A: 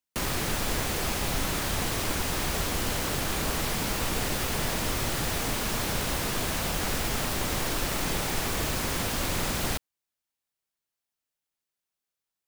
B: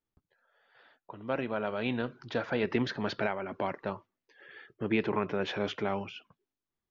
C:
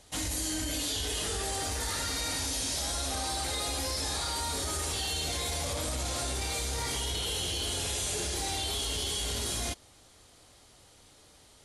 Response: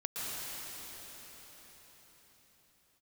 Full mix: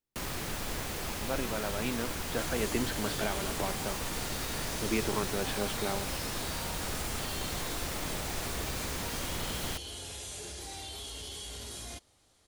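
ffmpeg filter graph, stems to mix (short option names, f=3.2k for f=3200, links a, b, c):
-filter_complex "[0:a]volume=-7.5dB[a];[1:a]volume=-3dB[b];[2:a]adelay=2250,volume=-9.5dB[c];[a][b][c]amix=inputs=3:normalize=0"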